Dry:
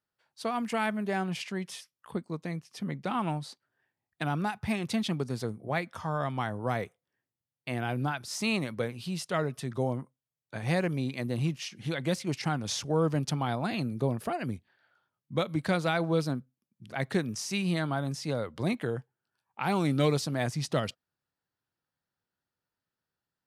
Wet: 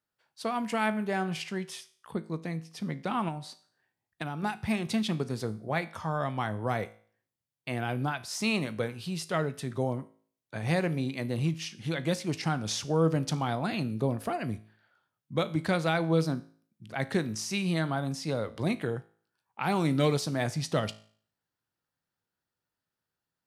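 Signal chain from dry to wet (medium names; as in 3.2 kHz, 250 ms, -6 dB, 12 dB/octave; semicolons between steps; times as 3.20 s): feedback comb 54 Hz, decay 0.49 s, harmonics all, mix 50%; 3.28–4.43 s: compression 5:1, threshold -37 dBFS, peak gain reduction 7 dB; trim +4.5 dB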